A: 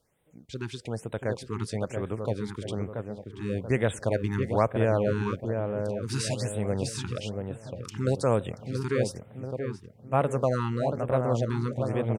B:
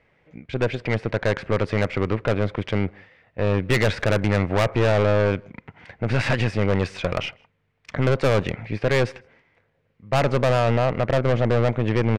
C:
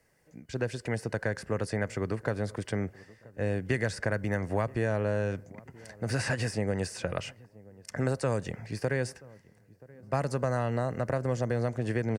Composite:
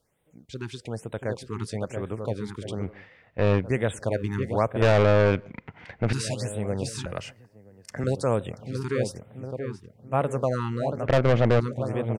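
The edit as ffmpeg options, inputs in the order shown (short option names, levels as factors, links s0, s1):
-filter_complex "[1:a]asplit=3[s0][s1][s2];[0:a]asplit=5[s3][s4][s5][s6][s7];[s3]atrim=end=2.97[s8];[s0]atrim=start=2.81:end=3.7[s9];[s4]atrim=start=3.54:end=4.822[s10];[s1]atrim=start=4.818:end=6.132[s11];[s5]atrim=start=6.128:end=7.062[s12];[2:a]atrim=start=7.058:end=8.042[s13];[s6]atrim=start=8.038:end=11.062[s14];[s2]atrim=start=11.058:end=11.602[s15];[s7]atrim=start=11.598[s16];[s8][s9]acrossfade=d=0.16:c1=tri:c2=tri[s17];[s17][s10]acrossfade=d=0.16:c1=tri:c2=tri[s18];[s18][s11]acrossfade=d=0.004:c1=hsin:c2=hsin[s19];[s19][s12]acrossfade=d=0.004:c1=hsin:c2=hsin[s20];[s20][s13]acrossfade=d=0.004:c1=hsin:c2=hsin[s21];[s21][s14]acrossfade=d=0.004:c1=hsin:c2=hsin[s22];[s22][s15]acrossfade=d=0.004:c1=hsin:c2=hsin[s23];[s23][s16]acrossfade=d=0.004:c1=hsin:c2=hsin"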